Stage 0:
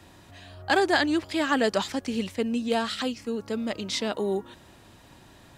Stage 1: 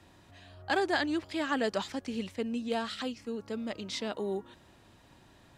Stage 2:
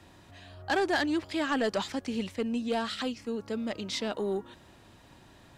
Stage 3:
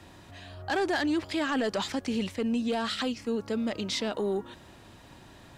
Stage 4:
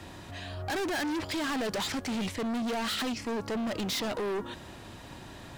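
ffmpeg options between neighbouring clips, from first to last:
-af "highshelf=f=8.9k:g=-6.5,volume=-6.5dB"
-af "asoftclip=type=tanh:threshold=-23.5dB,volume=3.5dB"
-af "alimiter=level_in=2dB:limit=-24dB:level=0:latency=1:release=25,volume=-2dB,volume=4dB"
-af "asoftclip=type=hard:threshold=-35.5dB,volume=5.5dB"

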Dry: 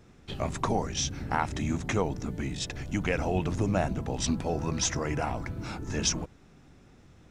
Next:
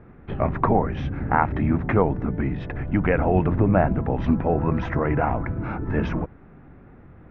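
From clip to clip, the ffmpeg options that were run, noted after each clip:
-af "lowpass=f=1.9k:w=0.5412,lowpass=f=1.9k:w=1.3066,volume=8.5dB"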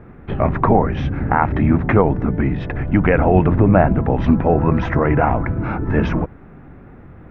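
-af "alimiter=level_in=7.5dB:limit=-1dB:release=50:level=0:latency=1,volume=-1dB"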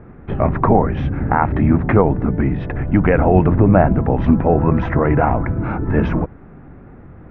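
-af "lowpass=f=2k:p=1,volume=1dB"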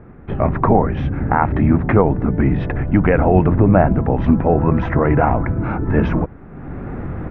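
-af "dynaudnorm=f=260:g=3:m=15dB,volume=-1dB"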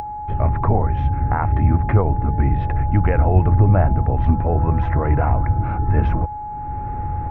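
-af "lowshelf=f=130:t=q:w=1.5:g=9,aeval=exprs='val(0)+0.1*sin(2*PI*840*n/s)':c=same,acompressor=mode=upward:threshold=-21dB:ratio=2.5,volume=-7dB"

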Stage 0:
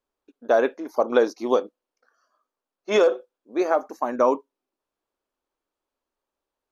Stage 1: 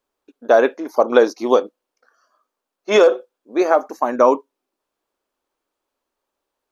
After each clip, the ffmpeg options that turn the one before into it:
-af "lowshelf=f=140:g=-6.5,volume=6.5dB"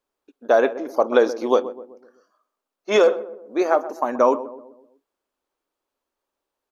-filter_complex "[0:a]asplit=2[a][b];[b]adelay=127,lowpass=f=900:p=1,volume=-13dB,asplit=2[c][d];[d]adelay=127,lowpass=f=900:p=1,volume=0.51,asplit=2[e][f];[f]adelay=127,lowpass=f=900:p=1,volume=0.51,asplit=2[g][h];[h]adelay=127,lowpass=f=900:p=1,volume=0.51,asplit=2[i][j];[j]adelay=127,lowpass=f=900:p=1,volume=0.51[k];[a][c][e][g][i][k]amix=inputs=6:normalize=0,volume=-3.5dB"

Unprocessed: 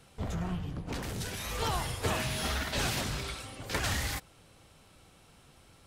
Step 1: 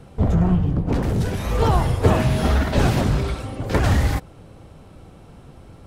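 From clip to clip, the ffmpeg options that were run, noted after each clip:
-af "tiltshelf=f=1.3k:g=9,volume=8.5dB"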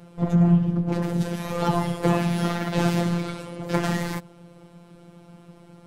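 -af "lowshelf=f=110:t=q:w=1.5:g=-10,afftfilt=real='hypot(re,im)*cos(PI*b)':imag='0':win_size=1024:overlap=0.75"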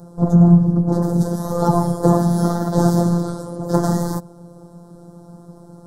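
-af "asuperstop=centerf=2500:order=4:qfactor=0.58,volume=7dB"

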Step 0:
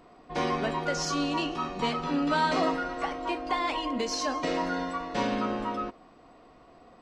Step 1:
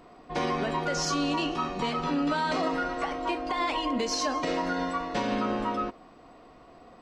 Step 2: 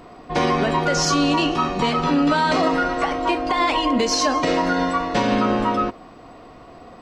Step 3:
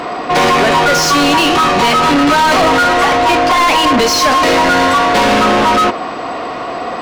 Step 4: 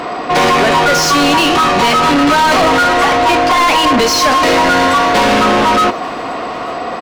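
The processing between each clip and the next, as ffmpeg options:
-af "alimiter=limit=-21.5dB:level=0:latency=1:release=91,volume=2.5dB"
-af "equalizer=f=100:t=o:w=0.85:g=5,volume=9dB"
-filter_complex "[0:a]asplit=2[a][b];[b]highpass=f=720:p=1,volume=28dB,asoftclip=type=tanh:threshold=-9dB[c];[a][c]amix=inputs=2:normalize=0,lowpass=f=4k:p=1,volume=-6dB,volume=4.5dB"
-af "aecho=1:1:885|1770:0.0841|0.0286"

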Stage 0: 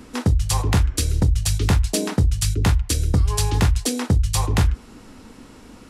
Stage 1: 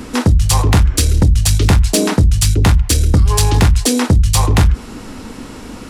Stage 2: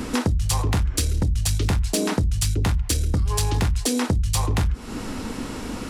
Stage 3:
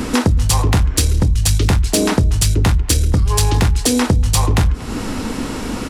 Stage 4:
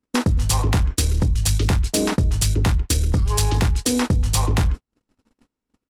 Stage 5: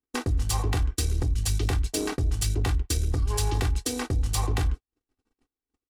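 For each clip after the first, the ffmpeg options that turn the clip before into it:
-filter_complex "[0:a]asplit=2[a][b];[b]alimiter=limit=-21.5dB:level=0:latency=1,volume=-1.5dB[c];[a][c]amix=inputs=2:normalize=0,asoftclip=type=tanh:threshold=-11.5dB,volume=7.5dB"
-af "acompressor=threshold=-21dB:ratio=4"
-filter_complex "[0:a]asplit=2[a][b];[b]adelay=236,lowpass=f=2.8k:p=1,volume=-18.5dB,asplit=2[c][d];[d]adelay=236,lowpass=f=2.8k:p=1,volume=0.49,asplit=2[e][f];[f]adelay=236,lowpass=f=2.8k:p=1,volume=0.49,asplit=2[g][h];[h]adelay=236,lowpass=f=2.8k:p=1,volume=0.49[i];[a][c][e][g][i]amix=inputs=5:normalize=0,volume=7.5dB"
-af "agate=range=-56dB:threshold=-16dB:ratio=16:detection=peak,volume=-4.5dB"
-af "aecho=1:1:2.6:0.64,aeval=exprs='0.473*(cos(1*acos(clip(val(0)/0.473,-1,1)))-cos(1*PI/2))+0.0266*(cos(7*acos(clip(val(0)/0.473,-1,1)))-cos(7*PI/2))':c=same,volume=-9dB"

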